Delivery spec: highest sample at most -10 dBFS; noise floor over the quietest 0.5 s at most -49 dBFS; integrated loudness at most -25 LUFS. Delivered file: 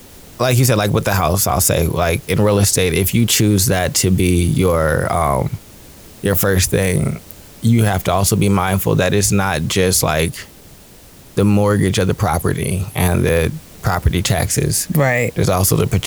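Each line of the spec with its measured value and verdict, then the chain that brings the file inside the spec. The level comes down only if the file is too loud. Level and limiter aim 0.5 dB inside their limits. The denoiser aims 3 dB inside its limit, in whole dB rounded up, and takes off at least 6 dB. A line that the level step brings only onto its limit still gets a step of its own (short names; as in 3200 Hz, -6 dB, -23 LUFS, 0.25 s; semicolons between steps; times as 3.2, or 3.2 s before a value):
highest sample -3.5 dBFS: fail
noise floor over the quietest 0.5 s -42 dBFS: fail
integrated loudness -16.0 LUFS: fail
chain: gain -9.5 dB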